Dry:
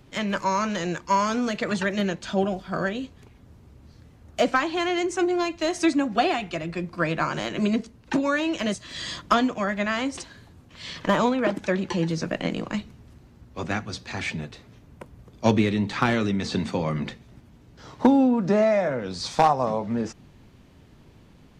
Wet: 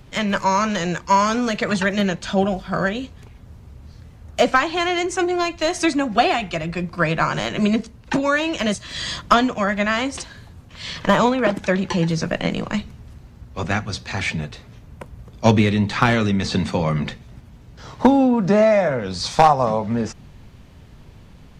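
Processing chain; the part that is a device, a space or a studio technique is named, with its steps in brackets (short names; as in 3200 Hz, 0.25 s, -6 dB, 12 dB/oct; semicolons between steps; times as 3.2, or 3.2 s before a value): low shelf boost with a cut just above (low shelf 79 Hz +7 dB; bell 310 Hz -5.5 dB 0.79 oct); gain +6 dB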